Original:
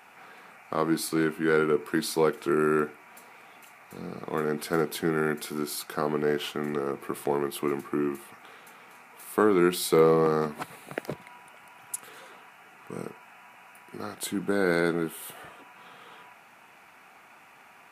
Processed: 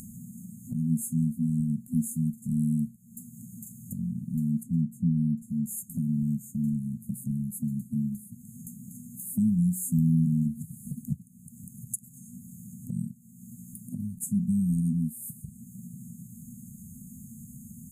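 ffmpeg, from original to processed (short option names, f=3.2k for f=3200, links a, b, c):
-filter_complex "[0:a]asettb=1/sr,asplit=3[a][b][c];[a]atrim=end=4.634[d];[b]atrim=start=4.63:end=5.66,asetpts=PTS-STARTPTS,afade=t=in:d=0.004:c=qsin,afade=t=out:st=1.026:d=0.004:c=qsin,lowpass=f=1.6k:p=1[e];[c]atrim=start=5.656[f];[d][e]acrossfade=d=0.004:c1=hsin:c2=qsin[g];[g][f]acrossfade=d=0.004:c1=qsin:c2=hsin,lowshelf=f=340:g=12,afftfilt=real='re*(1-between(b*sr/4096,250,6400))':imag='im*(1-between(b*sr/4096,250,6400))':win_size=4096:overlap=0.75,acompressor=mode=upward:threshold=-30dB:ratio=2.5"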